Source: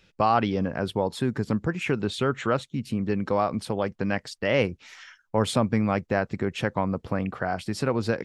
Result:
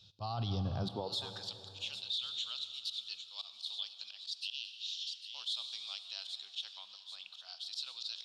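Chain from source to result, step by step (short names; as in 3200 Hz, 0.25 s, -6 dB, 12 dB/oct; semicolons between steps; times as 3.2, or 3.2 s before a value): EQ curve 120 Hz 0 dB, 210 Hz -10 dB, 660 Hz -13 dB, 2100 Hz -22 dB, 3700 Hz +13 dB, 9100 Hz -6 dB; high-pass sweep 97 Hz -> 3100 Hz, 0.74–1.52; band shelf 950 Hz +9 dB 1.3 oct; thin delay 0.8 s, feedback 36%, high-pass 3700 Hz, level -11 dB; auto swell 0.12 s; plate-style reverb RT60 3.1 s, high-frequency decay 0.9×, DRR 12 dB; limiter -25 dBFS, peak gain reduction 15 dB; spectral repair 4.42–5.15, 200–2400 Hz both; gain -3 dB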